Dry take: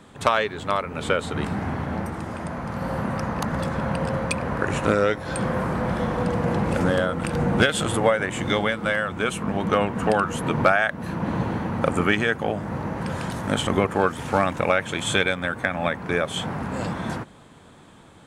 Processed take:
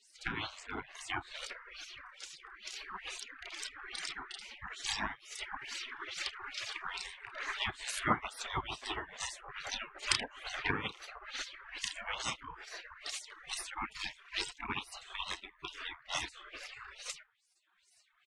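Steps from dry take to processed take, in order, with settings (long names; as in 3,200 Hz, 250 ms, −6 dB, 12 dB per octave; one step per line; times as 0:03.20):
on a send: ambience of single reflections 32 ms −5.5 dB, 80 ms −13.5 dB
on the sum: reverb reduction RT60 1.4 s
auto-filter low-pass sine 2.3 Hz 560–6,900 Hz
gate on every frequency bin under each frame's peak −30 dB weak
level +8.5 dB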